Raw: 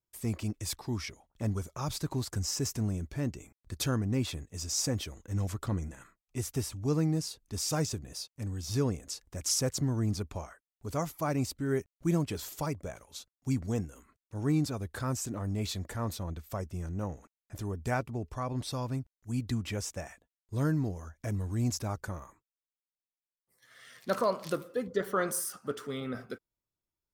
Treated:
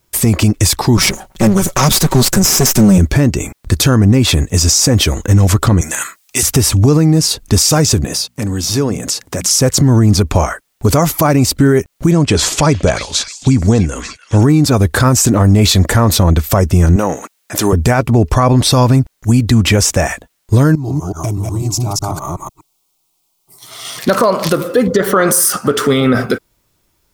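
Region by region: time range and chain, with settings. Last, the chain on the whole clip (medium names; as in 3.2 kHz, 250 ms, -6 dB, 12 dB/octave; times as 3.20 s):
0.97–2.98 s: comb filter that takes the minimum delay 5.3 ms + peaking EQ 14 kHz +4.5 dB 2.4 oct
5.81–6.43 s: high-pass 1.1 kHz 6 dB/octave + treble shelf 2.6 kHz +10 dB
8.05–9.51 s: high-pass 140 Hz + hum notches 60/120/180/240 Hz + compression 2.5:1, threshold -48 dBFS
12.11–14.41 s: low-pass 8.8 kHz 24 dB/octave + repeats whose band climbs or falls 297 ms, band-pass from 2.3 kHz, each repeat 0.7 oct, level -9 dB
16.96–17.73 s: high-pass 240 Hz + tilt shelf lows -3 dB, about 1.3 kHz
20.75–23.99 s: chunks repeated in reverse 124 ms, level -0.5 dB + compression, threshold -43 dBFS + static phaser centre 340 Hz, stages 8
whole clip: compression, threshold -34 dBFS; loudness maximiser +31.5 dB; trim -1 dB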